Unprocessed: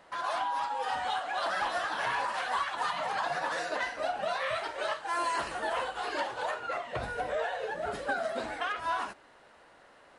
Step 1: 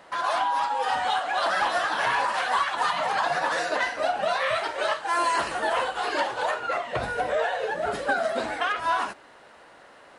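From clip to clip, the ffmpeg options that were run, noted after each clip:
-af "lowshelf=f=69:g=-8,volume=7dB"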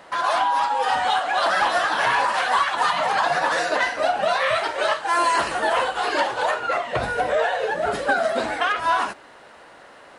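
-af "acontrast=50,volume=-1.5dB"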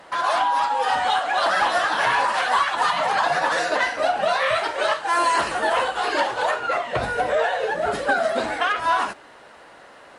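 -ar 48000 -c:a libopus -b:a 64k

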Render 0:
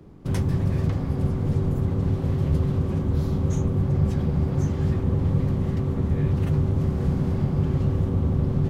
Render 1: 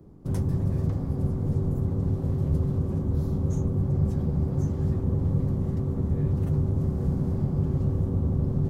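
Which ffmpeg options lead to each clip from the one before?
-af "equalizer=f=2.6k:t=o:w=2.1:g=-12,volume=-2.5dB"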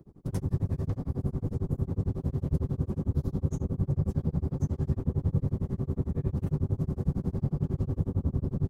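-af "tremolo=f=11:d=1"

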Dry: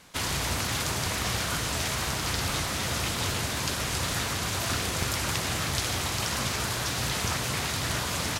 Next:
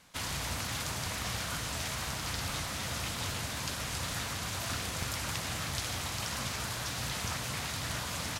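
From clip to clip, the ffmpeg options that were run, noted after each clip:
-af "equalizer=f=380:w=2.7:g=-5.5,volume=-6.5dB"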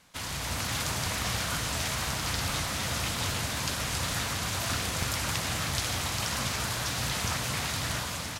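-af "dynaudnorm=f=200:g=5:m=5dB"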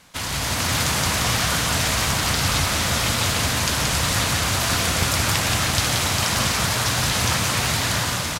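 -af "aecho=1:1:177:0.631,volume=8.5dB"

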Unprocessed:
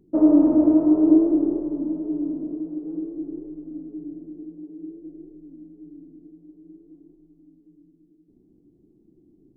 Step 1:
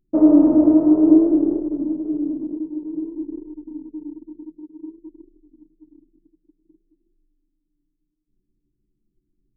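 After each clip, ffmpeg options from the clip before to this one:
-af "anlmdn=39.8,volume=3dB"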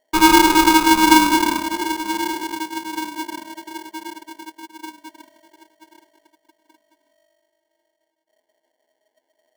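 -af "aeval=exprs='val(0)*sgn(sin(2*PI*630*n/s))':c=same"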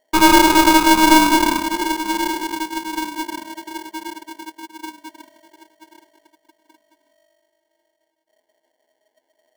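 -af "aeval=exprs='(tanh(2.51*val(0)+0.4)-tanh(0.4))/2.51':c=same,volume=3.5dB"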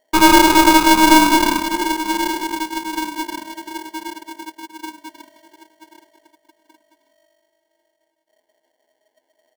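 -af "aecho=1:1:316:0.106,volume=1dB"

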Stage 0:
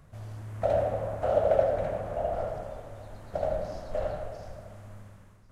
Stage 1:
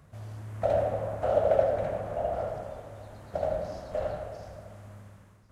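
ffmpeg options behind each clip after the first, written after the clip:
-af "highpass=50"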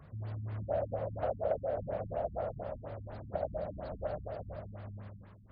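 -af "acompressor=threshold=-38dB:ratio=2,afftfilt=real='re*lt(b*sr/1024,250*pow(5100/250,0.5+0.5*sin(2*PI*4.2*pts/sr)))':imag='im*lt(b*sr/1024,250*pow(5100/250,0.5+0.5*sin(2*PI*4.2*pts/sr)))':win_size=1024:overlap=0.75,volume=2dB"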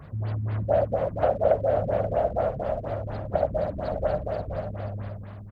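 -filter_complex "[0:a]aecho=1:1:530:0.335,asplit=2[a][b];[b]aeval=exprs='sgn(val(0))*max(abs(val(0))-0.00133,0)':c=same,volume=-9dB[c];[a][c]amix=inputs=2:normalize=0,volume=8.5dB"

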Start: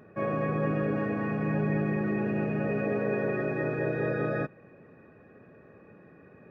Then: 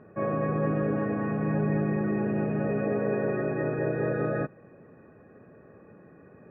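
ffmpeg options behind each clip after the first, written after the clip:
-af "lowpass=1.7k,volume=1.5dB"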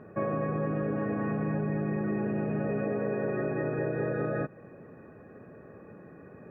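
-af "acompressor=threshold=-30dB:ratio=6,volume=3dB"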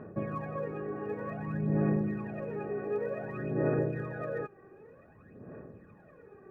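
-af "aphaser=in_gain=1:out_gain=1:delay=2.6:decay=0.7:speed=0.54:type=sinusoidal,volume=-7dB"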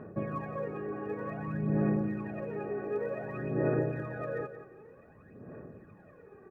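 -af "aecho=1:1:177|354|531:0.266|0.0692|0.018"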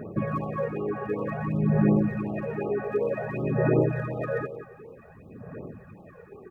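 -af "afftfilt=real='re*(1-between(b*sr/1024,260*pow(1900/260,0.5+0.5*sin(2*PI*2.7*pts/sr))/1.41,260*pow(1900/260,0.5+0.5*sin(2*PI*2.7*pts/sr))*1.41))':imag='im*(1-between(b*sr/1024,260*pow(1900/260,0.5+0.5*sin(2*PI*2.7*pts/sr))/1.41,260*pow(1900/260,0.5+0.5*sin(2*PI*2.7*pts/sr))*1.41))':win_size=1024:overlap=0.75,volume=8dB"

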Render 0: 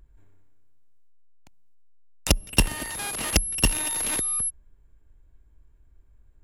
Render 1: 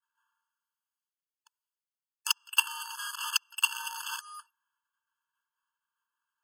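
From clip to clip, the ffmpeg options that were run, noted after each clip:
-af "agate=range=-33dB:threshold=-50dB:ratio=3:detection=peak,afftfilt=real='re*eq(mod(floor(b*sr/1024/870),2),1)':imag='im*eq(mod(floor(b*sr/1024/870),2),1)':win_size=1024:overlap=0.75"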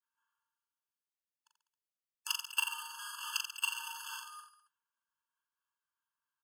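-af "aecho=1:1:40|86|138.9|199.7|269.7:0.631|0.398|0.251|0.158|0.1,volume=-8.5dB"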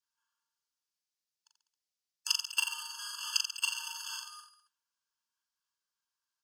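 -af "equalizer=f=5.2k:w=0.98:g=13.5,volume=-3.5dB"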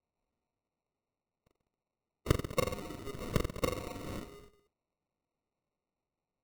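-af "acrusher=samples=27:mix=1:aa=0.000001"

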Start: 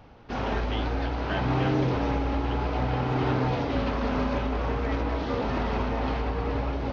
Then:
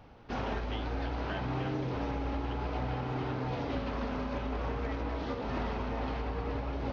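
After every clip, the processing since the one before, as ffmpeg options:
-af "alimiter=limit=-21.5dB:level=0:latency=1:release=381,volume=-3.5dB"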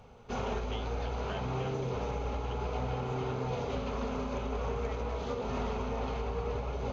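-af "superequalizer=6b=0.316:7b=1.58:11b=0.501:15b=3.55:16b=1.78"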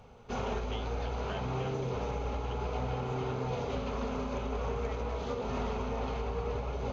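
-af anull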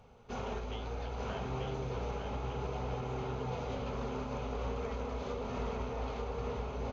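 -af "aecho=1:1:896:0.596,volume=-4.5dB"

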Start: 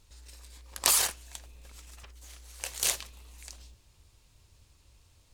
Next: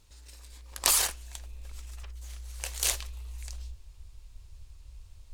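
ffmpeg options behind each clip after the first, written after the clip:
-af "asubboost=boost=12:cutoff=52"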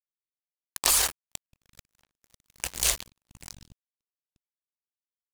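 -filter_complex "[0:a]asplit=2[a][b];[b]alimiter=limit=-11.5dB:level=0:latency=1:release=450,volume=2.5dB[c];[a][c]amix=inputs=2:normalize=0,acrusher=bits=3:mix=0:aa=0.5,volume=-2.5dB"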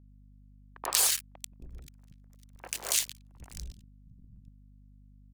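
-filter_complex "[0:a]acrossover=split=250|1700[a][b][c];[c]adelay=90[d];[a]adelay=760[e];[e][b][d]amix=inputs=3:normalize=0,aeval=exprs='val(0)+0.00251*(sin(2*PI*50*n/s)+sin(2*PI*2*50*n/s)/2+sin(2*PI*3*50*n/s)/3+sin(2*PI*4*50*n/s)/4+sin(2*PI*5*50*n/s)/5)':c=same,volume=-2.5dB"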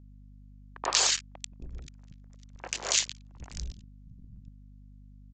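-af "aresample=16000,aresample=44100,volume=4.5dB"

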